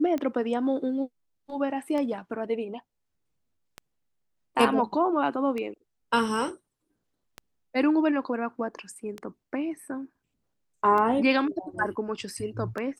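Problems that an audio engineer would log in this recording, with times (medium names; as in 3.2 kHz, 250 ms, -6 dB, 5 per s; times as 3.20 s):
tick 33 1/3 rpm -20 dBFS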